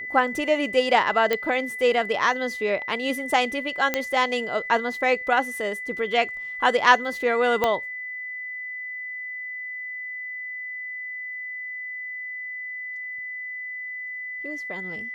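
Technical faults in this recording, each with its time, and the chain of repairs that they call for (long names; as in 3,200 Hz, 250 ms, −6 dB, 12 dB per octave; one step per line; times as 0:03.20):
whistle 2,000 Hz −31 dBFS
0:01.33: click −10 dBFS
0:03.94: click −7 dBFS
0:07.64: click −8 dBFS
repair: click removal
notch filter 2,000 Hz, Q 30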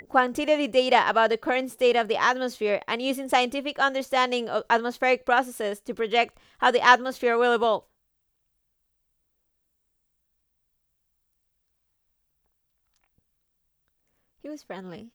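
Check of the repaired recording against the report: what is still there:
0:07.64: click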